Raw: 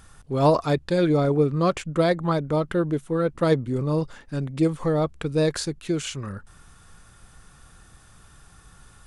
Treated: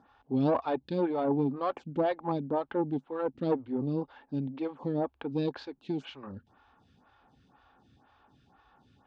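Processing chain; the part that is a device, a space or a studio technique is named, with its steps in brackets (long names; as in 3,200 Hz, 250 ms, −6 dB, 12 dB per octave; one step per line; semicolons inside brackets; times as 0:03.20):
vibe pedal into a guitar amplifier (phaser with staggered stages 2 Hz; tube saturation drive 16 dB, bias 0.4; loudspeaker in its box 89–3,900 Hz, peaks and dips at 160 Hz −5 dB, 260 Hz +10 dB, 840 Hz +10 dB, 1,300 Hz −4 dB, 2,000 Hz −6 dB)
level −4.5 dB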